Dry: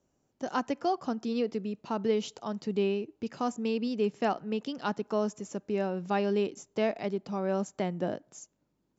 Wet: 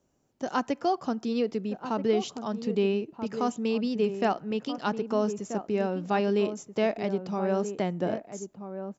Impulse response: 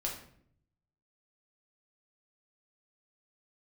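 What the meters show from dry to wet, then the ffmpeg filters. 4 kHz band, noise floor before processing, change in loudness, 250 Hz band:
+2.5 dB, −77 dBFS, +3.0 dB, +3.0 dB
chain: -filter_complex "[0:a]asplit=2[link_01][link_02];[link_02]adelay=1283,volume=-9dB,highshelf=frequency=4000:gain=-28.9[link_03];[link_01][link_03]amix=inputs=2:normalize=0,volume=2.5dB"

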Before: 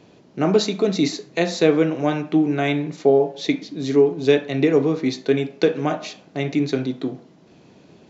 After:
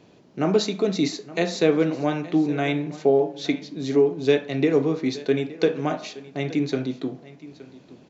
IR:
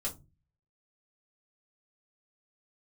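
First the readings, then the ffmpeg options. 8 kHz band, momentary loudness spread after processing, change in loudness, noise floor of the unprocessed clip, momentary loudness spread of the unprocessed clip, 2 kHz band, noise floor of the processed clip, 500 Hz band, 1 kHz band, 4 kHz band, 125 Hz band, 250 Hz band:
can't be measured, 11 LU, −3.0 dB, −51 dBFS, 9 LU, −3.0 dB, −53 dBFS, −3.0 dB, −3.0 dB, −3.0 dB, −3.0 dB, −3.0 dB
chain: -af "aecho=1:1:870:0.119,volume=-3dB"

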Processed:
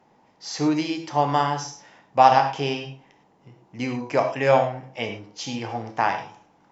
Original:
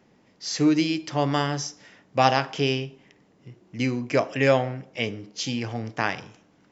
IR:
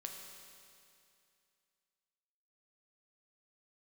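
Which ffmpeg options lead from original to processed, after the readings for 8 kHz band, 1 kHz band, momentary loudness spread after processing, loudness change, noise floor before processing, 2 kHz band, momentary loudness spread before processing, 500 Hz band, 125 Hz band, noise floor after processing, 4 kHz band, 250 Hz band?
can't be measured, +7.0 dB, 15 LU, +2.0 dB, −61 dBFS, −1.0 dB, 11 LU, +1.5 dB, −2.5 dB, −60 dBFS, −2.5 dB, −2.5 dB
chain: -filter_complex "[0:a]equalizer=frequency=860:width_type=o:width=0.81:gain=13.5[link_01];[1:a]atrim=start_sample=2205,afade=type=out:start_time=0.15:duration=0.01,atrim=end_sample=7056,asetrate=37926,aresample=44100[link_02];[link_01][link_02]afir=irnorm=-1:irlink=0"

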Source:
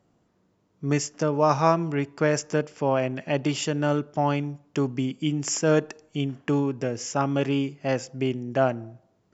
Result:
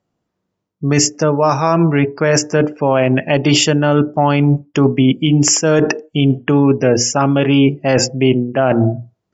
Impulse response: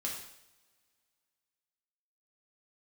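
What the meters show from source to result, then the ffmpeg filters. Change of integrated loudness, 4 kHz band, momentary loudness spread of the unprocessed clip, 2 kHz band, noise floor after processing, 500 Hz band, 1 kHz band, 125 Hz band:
+11.5 dB, +16.0 dB, 8 LU, +11.5 dB, −75 dBFS, +10.5 dB, +8.5 dB, +13.0 dB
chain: -af "lowpass=5500,bandreject=frequency=60:width_type=h:width=6,bandreject=frequency=120:width_type=h:width=6,bandreject=frequency=180:width_type=h:width=6,bandreject=frequency=240:width_type=h:width=6,bandreject=frequency=300:width_type=h:width=6,bandreject=frequency=360:width_type=h:width=6,bandreject=frequency=420:width_type=h:width=6,afftdn=noise_reduction=33:noise_floor=-45,areverse,acompressor=threshold=-36dB:ratio=8,areverse,crystalizer=i=1.5:c=0,alimiter=level_in=28.5dB:limit=-1dB:release=50:level=0:latency=1,volume=-1.5dB"

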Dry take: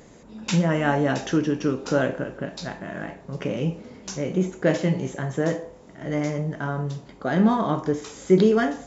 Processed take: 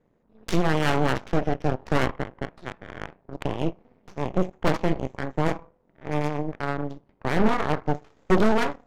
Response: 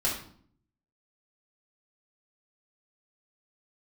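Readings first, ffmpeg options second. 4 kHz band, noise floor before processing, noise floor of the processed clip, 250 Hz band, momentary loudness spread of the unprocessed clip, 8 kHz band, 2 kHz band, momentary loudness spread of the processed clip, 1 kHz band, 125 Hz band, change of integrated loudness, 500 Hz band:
0.0 dB, −48 dBFS, −66 dBFS, −4.0 dB, 14 LU, can't be measured, 0.0 dB, 16 LU, +2.0 dB, −2.5 dB, −2.0 dB, −3.0 dB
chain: -af "aeval=exprs='0.531*(cos(1*acos(clip(val(0)/0.531,-1,1)))-cos(1*PI/2))+0.15*(cos(6*acos(clip(val(0)/0.531,-1,1)))-cos(6*PI/2))+0.0668*(cos(7*acos(clip(val(0)/0.531,-1,1)))-cos(7*PI/2))':channel_layout=same,adynamicsmooth=sensitivity=3.5:basefreq=2200,asoftclip=type=tanh:threshold=-9.5dB"

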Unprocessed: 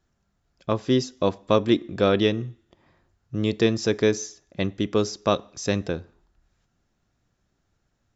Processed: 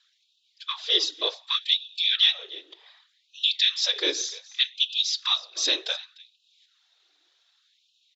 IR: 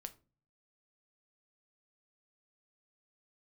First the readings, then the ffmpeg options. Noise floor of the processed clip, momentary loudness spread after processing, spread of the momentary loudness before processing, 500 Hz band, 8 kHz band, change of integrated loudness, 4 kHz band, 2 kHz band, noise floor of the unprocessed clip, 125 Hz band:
−70 dBFS, 12 LU, 11 LU, −15.5 dB, can't be measured, +1.0 dB, +13.0 dB, +1.0 dB, −73 dBFS, below −40 dB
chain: -filter_complex "[0:a]asoftclip=type=tanh:threshold=-6dB,alimiter=limit=-19dB:level=0:latency=1:release=445,highpass=220,equalizer=frequency=540:width_type=o:width=0.49:gain=-5.5,aecho=1:1:298:0.1,asplit=2[link_01][link_02];[1:a]atrim=start_sample=2205,afade=type=out:start_time=0.19:duration=0.01,atrim=end_sample=8820,lowshelf=frequency=390:gain=9[link_03];[link_02][link_03]afir=irnorm=-1:irlink=0,volume=3.5dB[link_04];[link_01][link_04]amix=inputs=2:normalize=0,crystalizer=i=6:c=0,lowpass=frequency=3700:width_type=q:width=5.2,afftfilt=real='hypot(re,im)*cos(2*PI*random(0))':imag='hypot(re,im)*sin(2*PI*random(1))':win_size=512:overlap=0.75,afftfilt=real='re*gte(b*sr/1024,280*pow(2500/280,0.5+0.5*sin(2*PI*0.66*pts/sr)))':imag='im*gte(b*sr/1024,280*pow(2500/280,0.5+0.5*sin(2*PI*0.66*pts/sr)))':win_size=1024:overlap=0.75"

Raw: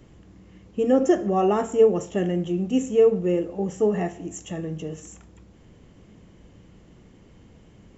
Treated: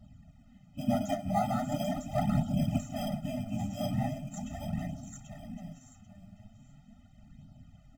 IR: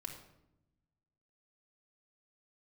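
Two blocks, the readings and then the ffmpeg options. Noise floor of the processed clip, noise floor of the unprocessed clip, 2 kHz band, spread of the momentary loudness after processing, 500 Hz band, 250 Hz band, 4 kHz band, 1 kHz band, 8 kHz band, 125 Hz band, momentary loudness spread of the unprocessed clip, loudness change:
−58 dBFS, −52 dBFS, −7.5 dB, 16 LU, −17.0 dB, −7.5 dB, −2.5 dB, −5.0 dB, can't be measured, −1.0 dB, 15 LU, −10.5 dB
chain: -filter_complex "[0:a]aecho=1:1:787|1574|2361:0.631|0.126|0.0252,afftfilt=real='hypot(re,im)*cos(2*PI*random(0))':imag='hypot(re,im)*sin(2*PI*random(1))':win_size=512:overlap=0.75,asplit=2[link_01][link_02];[link_02]acrusher=samples=16:mix=1:aa=0.000001,volume=-9.5dB[link_03];[link_01][link_03]amix=inputs=2:normalize=0,flanger=delay=0.2:depth=9.9:regen=12:speed=0.4:shape=sinusoidal,afftfilt=real='re*eq(mod(floor(b*sr/1024/300),2),0)':imag='im*eq(mod(floor(b*sr/1024/300),2),0)':win_size=1024:overlap=0.75,volume=1.5dB"

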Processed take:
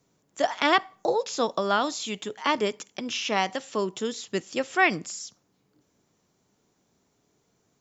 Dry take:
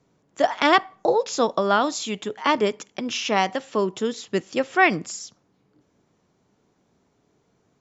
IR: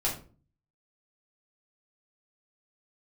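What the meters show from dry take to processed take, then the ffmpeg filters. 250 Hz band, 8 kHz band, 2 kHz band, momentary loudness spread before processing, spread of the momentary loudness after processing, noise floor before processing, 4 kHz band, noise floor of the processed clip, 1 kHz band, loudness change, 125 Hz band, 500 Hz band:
−5.0 dB, can't be measured, −3.0 dB, 11 LU, 10 LU, −67 dBFS, −2.0 dB, −71 dBFS, −4.5 dB, −4.0 dB, −5.0 dB, −5.0 dB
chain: -filter_complex "[0:a]acrossover=split=4100[link_01][link_02];[link_02]acompressor=threshold=-40dB:ratio=4:attack=1:release=60[link_03];[link_01][link_03]amix=inputs=2:normalize=0,crystalizer=i=2.5:c=0,volume=-5dB"

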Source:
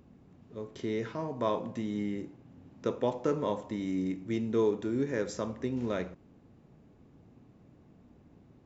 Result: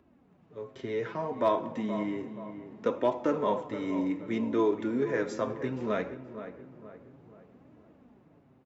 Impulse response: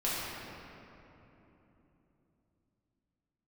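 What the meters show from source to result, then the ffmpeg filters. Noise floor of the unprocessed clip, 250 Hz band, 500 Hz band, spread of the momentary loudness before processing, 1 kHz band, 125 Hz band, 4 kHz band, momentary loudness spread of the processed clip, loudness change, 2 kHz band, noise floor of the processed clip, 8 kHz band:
−60 dBFS, +1.5 dB, +2.5 dB, 10 LU, +5.5 dB, −2.5 dB, −0.5 dB, 17 LU, +2.0 dB, +4.5 dB, −63 dBFS, can't be measured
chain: -filter_complex "[0:a]acrossover=split=460|2900[link_01][link_02][link_03];[link_02]acontrast=45[link_04];[link_01][link_04][link_03]amix=inputs=3:normalize=0,highpass=frequency=90:poles=1,bass=frequency=250:gain=1,treble=frequency=4000:gain=-5,asplit=2[link_05][link_06];[1:a]atrim=start_sample=2205,adelay=79[link_07];[link_06][link_07]afir=irnorm=-1:irlink=0,volume=-28.5dB[link_08];[link_05][link_08]amix=inputs=2:normalize=0,flanger=delay=3:depth=4.7:regen=24:speed=0.64:shape=sinusoidal,dynaudnorm=framelen=350:gausssize=5:maxgain=5dB,asoftclip=type=hard:threshold=-14.5dB,asplit=2[link_09][link_10];[link_10]adelay=475,lowpass=frequency=2000:poles=1,volume=-11dB,asplit=2[link_11][link_12];[link_12]adelay=475,lowpass=frequency=2000:poles=1,volume=0.45,asplit=2[link_13][link_14];[link_14]adelay=475,lowpass=frequency=2000:poles=1,volume=0.45,asplit=2[link_15][link_16];[link_16]adelay=475,lowpass=frequency=2000:poles=1,volume=0.45,asplit=2[link_17][link_18];[link_18]adelay=475,lowpass=frequency=2000:poles=1,volume=0.45[link_19];[link_09][link_11][link_13][link_15][link_17][link_19]amix=inputs=6:normalize=0,volume=-2dB"

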